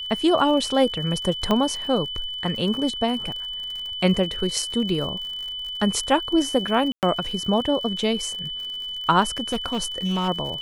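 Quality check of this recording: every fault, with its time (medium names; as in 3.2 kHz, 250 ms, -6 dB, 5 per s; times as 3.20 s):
crackle 59 per s -32 dBFS
whine 3 kHz -29 dBFS
1.51 s: pop -9 dBFS
6.92–7.03 s: dropout 108 ms
9.23–10.29 s: clipped -19.5 dBFS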